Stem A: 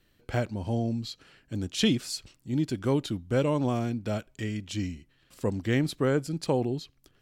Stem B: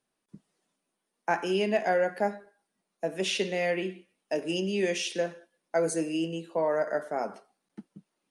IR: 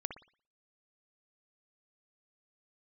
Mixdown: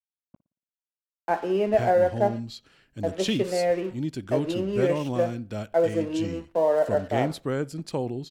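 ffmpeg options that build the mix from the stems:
-filter_complex "[0:a]adelay=1450,volume=-3.5dB,asplit=2[link_01][link_02];[link_02]volume=-17dB[link_03];[1:a]lowpass=frequency=1100:poles=1,adynamicequalizer=threshold=0.0112:dfrequency=610:dqfactor=0.95:tfrequency=610:tqfactor=0.95:attack=5:release=100:ratio=0.375:range=3.5:mode=boostabove:tftype=bell,aeval=exprs='sgn(val(0))*max(abs(val(0))-0.00531,0)':channel_layout=same,volume=-1dB,asplit=2[link_04][link_05];[link_05]volume=-11.5dB[link_06];[2:a]atrim=start_sample=2205[link_07];[link_03][link_06]amix=inputs=2:normalize=0[link_08];[link_08][link_07]afir=irnorm=-1:irlink=0[link_09];[link_01][link_04][link_09]amix=inputs=3:normalize=0"

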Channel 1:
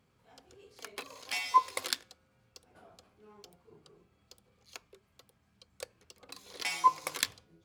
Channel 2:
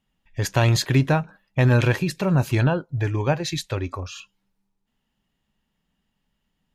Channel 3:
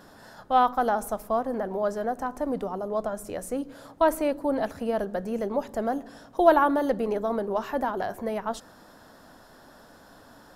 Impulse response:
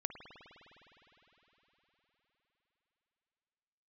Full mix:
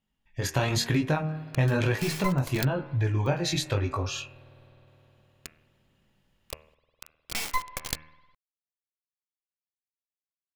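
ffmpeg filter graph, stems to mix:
-filter_complex "[0:a]acrusher=bits=3:dc=4:mix=0:aa=0.000001,adelay=700,volume=-4dB,asplit=2[link_01][link_02];[link_02]volume=-14.5dB[link_03];[1:a]flanger=delay=18.5:depth=4.6:speed=1,volume=-3.5dB,asplit=2[link_04][link_05];[link_05]volume=-19.5dB[link_06];[3:a]atrim=start_sample=2205[link_07];[link_03][link_06]amix=inputs=2:normalize=0[link_08];[link_08][link_07]afir=irnorm=-1:irlink=0[link_09];[link_01][link_04][link_09]amix=inputs=3:normalize=0,dynaudnorm=framelen=120:gausssize=9:maxgain=9.5dB,bandreject=frequency=77.81:width_type=h:width=4,bandreject=frequency=155.62:width_type=h:width=4,bandreject=frequency=233.43:width_type=h:width=4,bandreject=frequency=311.24:width_type=h:width=4,bandreject=frequency=389.05:width_type=h:width=4,bandreject=frequency=466.86:width_type=h:width=4,bandreject=frequency=544.67:width_type=h:width=4,bandreject=frequency=622.48:width_type=h:width=4,bandreject=frequency=700.29:width_type=h:width=4,bandreject=frequency=778.1:width_type=h:width=4,bandreject=frequency=855.91:width_type=h:width=4,bandreject=frequency=933.72:width_type=h:width=4,bandreject=frequency=1011.53:width_type=h:width=4,bandreject=frequency=1089.34:width_type=h:width=4,bandreject=frequency=1167.15:width_type=h:width=4,bandreject=frequency=1244.96:width_type=h:width=4,bandreject=frequency=1322.77:width_type=h:width=4,bandreject=frequency=1400.58:width_type=h:width=4,bandreject=frequency=1478.39:width_type=h:width=4,bandreject=frequency=1556.2:width_type=h:width=4,bandreject=frequency=1634.01:width_type=h:width=4,bandreject=frequency=1711.82:width_type=h:width=4,bandreject=frequency=1789.63:width_type=h:width=4,bandreject=frequency=1867.44:width_type=h:width=4,bandreject=frequency=1945.25:width_type=h:width=4,bandreject=frequency=2023.06:width_type=h:width=4,bandreject=frequency=2100.87:width_type=h:width=4,bandreject=frequency=2178.68:width_type=h:width=4,bandreject=frequency=2256.49:width_type=h:width=4,bandreject=frequency=2334.3:width_type=h:width=4,bandreject=frequency=2412.11:width_type=h:width=4,bandreject=frequency=2489.92:width_type=h:width=4,bandreject=frequency=2567.73:width_type=h:width=4,bandreject=frequency=2645.54:width_type=h:width=4,bandreject=frequency=2723.35:width_type=h:width=4,bandreject=frequency=2801.16:width_type=h:width=4,acompressor=threshold=-24dB:ratio=3"

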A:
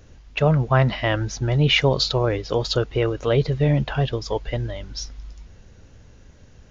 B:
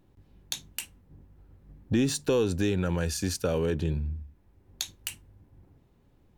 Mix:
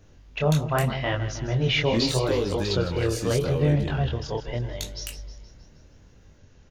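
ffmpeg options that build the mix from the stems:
ffmpeg -i stem1.wav -i stem2.wav -filter_complex "[0:a]volume=-2dB,asplit=2[link_01][link_02];[link_02]volume=-12dB[link_03];[1:a]volume=1.5dB[link_04];[link_03]aecho=0:1:157|314|471|628|785|942|1099|1256|1413:1|0.58|0.336|0.195|0.113|0.0656|0.0381|0.0221|0.0128[link_05];[link_01][link_04][link_05]amix=inputs=3:normalize=0,flanger=delay=20:depth=6.7:speed=0.8" out.wav

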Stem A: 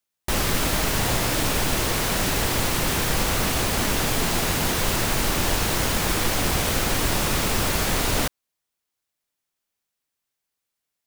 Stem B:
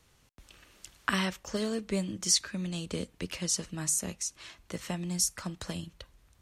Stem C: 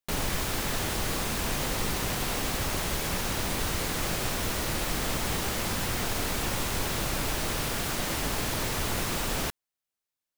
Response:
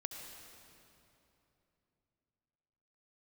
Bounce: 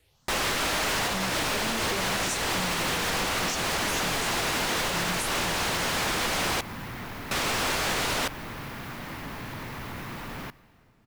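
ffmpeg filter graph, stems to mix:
-filter_complex "[0:a]highshelf=frequency=12000:gain=-6,asplit=2[link_01][link_02];[link_02]highpass=frequency=720:poles=1,volume=21dB,asoftclip=type=tanh:threshold=-9.5dB[link_03];[link_01][link_03]amix=inputs=2:normalize=0,lowpass=frequency=4800:poles=1,volume=-6dB,volume=-7dB,asplit=3[link_04][link_05][link_06];[link_04]atrim=end=6.61,asetpts=PTS-STARTPTS,afade=type=out:start_time=6.606:duration=0.004:curve=hsin[link_07];[link_05]atrim=start=6.61:end=7.31,asetpts=PTS-STARTPTS,volume=0[link_08];[link_06]atrim=start=7.31,asetpts=PTS-STARTPTS,afade=type=in:duration=0.004:curve=hsin[link_09];[link_07][link_08][link_09]concat=n=3:v=0:a=1[link_10];[1:a]asplit=2[link_11][link_12];[link_12]afreqshift=2.1[link_13];[link_11][link_13]amix=inputs=2:normalize=1,volume=-1.5dB,asplit=2[link_14][link_15];[link_15]volume=-4dB[link_16];[2:a]equalizer=frequency=125:width_type=o:width=1:gain=8,equalizer=frequency=250:width_type=o:width=1:gain=7,equalizer=frequency=1000:width_type=o:width=1:gain=7,equalizer=frequency=2000:width_type=o:width=1:gain=7,equalizer=frequency=8000:width_type=o:width=1:gain=-8,asoftclip=type=tanh:threshold=-19.5dB,adelay=1000,volume=-12dB,asplit=2[link_17][link_18];[link_18]volume=-12dB[link_19];[3:a]atrim=start_sample=2205[link_20];[link_16][link_19]amix=inputs=2:normalize=0[link_21];[link_21][link_20]afir=irnorm=-1:irlink=0[link_22];[link_10][link_14][link_17][link_22]amix=inputs=4:normalize=0,alimiter=limit=-20dB:level=0:latency=1:release=123"

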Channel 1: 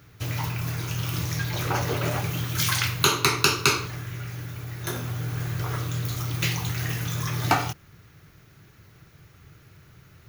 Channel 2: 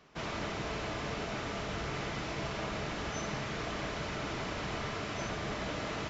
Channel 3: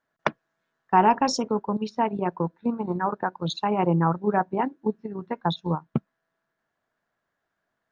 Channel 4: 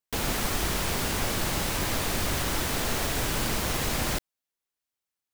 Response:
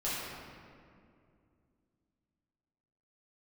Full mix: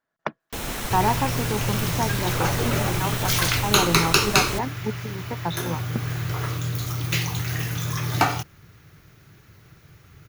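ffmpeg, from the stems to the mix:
-filter_complex "[0:a]adelay=700,volume=1.5dB[link_01];[1:a]highpass=1200,adelay=500,volume=-0.5dB[link_02];[2:a]deesser=0.75,volume=-3dB[link_03];[3:a]bandreject=frequency=4700:width=12,adelay=400,volume=-2dB[link_04];[link_01][link_02][link_03][link_04]amix=inputs=4:normalize=0"

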